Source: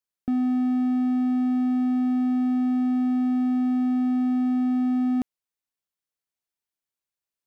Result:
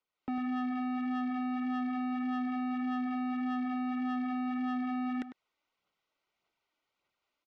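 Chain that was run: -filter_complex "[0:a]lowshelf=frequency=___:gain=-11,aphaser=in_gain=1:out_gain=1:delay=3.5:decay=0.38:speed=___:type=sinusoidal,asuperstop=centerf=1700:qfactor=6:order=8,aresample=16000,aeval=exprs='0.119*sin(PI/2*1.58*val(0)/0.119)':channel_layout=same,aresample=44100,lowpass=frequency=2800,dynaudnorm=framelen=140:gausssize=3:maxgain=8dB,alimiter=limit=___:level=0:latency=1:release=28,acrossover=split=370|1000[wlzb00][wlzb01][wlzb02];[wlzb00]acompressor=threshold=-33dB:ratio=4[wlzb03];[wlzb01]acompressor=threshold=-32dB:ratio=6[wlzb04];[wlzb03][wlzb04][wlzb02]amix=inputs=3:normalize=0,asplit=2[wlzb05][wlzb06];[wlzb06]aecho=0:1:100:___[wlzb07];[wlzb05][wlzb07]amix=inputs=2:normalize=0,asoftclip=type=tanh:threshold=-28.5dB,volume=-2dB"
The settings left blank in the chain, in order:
200, 1.7, -15.5dB, 0.158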